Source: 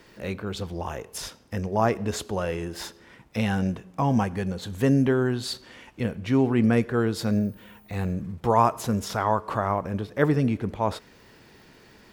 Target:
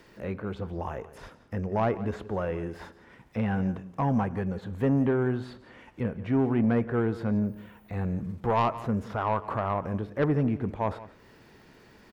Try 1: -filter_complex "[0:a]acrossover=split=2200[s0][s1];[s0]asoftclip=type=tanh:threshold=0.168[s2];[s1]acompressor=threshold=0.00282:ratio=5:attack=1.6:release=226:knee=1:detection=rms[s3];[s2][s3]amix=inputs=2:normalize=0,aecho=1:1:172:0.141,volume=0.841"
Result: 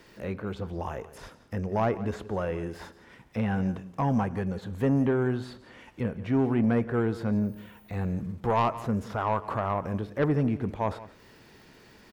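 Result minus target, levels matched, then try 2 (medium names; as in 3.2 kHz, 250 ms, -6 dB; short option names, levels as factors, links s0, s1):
compression: peak gain reduction -6.5 dB
-filter_complex "[0:a]acrossover=split=2200[s0][s1];[s0]asoftclip=type=tanh:threshold=0.168[s2];[s1]acompressor=threshold=0.00112:ratio=5:attack=1.6:release=226:knee=1:detection=rms[s3];[s2][s3]amix=inputs=2:normalize=0,aecho=1:1:172:0.141,volume=0.841"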